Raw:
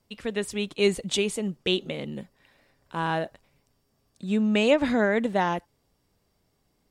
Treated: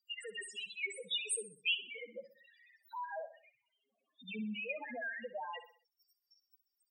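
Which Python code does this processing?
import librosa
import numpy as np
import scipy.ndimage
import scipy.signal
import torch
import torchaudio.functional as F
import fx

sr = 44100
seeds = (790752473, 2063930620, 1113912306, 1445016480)

y = fx.ellip_lowpass(x, sr, hz=3400.0, order=4, stop_db=80, at=(2.98, 4.98))
y = fx.hpss(y, sr, part='harmonic', gain_db=-12)
y = fx.tilt_eq(y, sr, slope=4.5)
y = fx.level_steps(y, sr, step_db=23)
y = 10.0 ** (-21.0 / 20.0) * np.tanh(y / 10.0 ** (-21.0 / 20.0))
y = fx.spec_topn(y, sr, count=2)
y = fx.echo_feedback(y, sr, ms=63, feedback_pct=38, wet_db=-13.0)
y = fx.band_squash(y, sr, depth_pct=40)
y = F.gain(torch.from_numpy(y), 11.5).numpy()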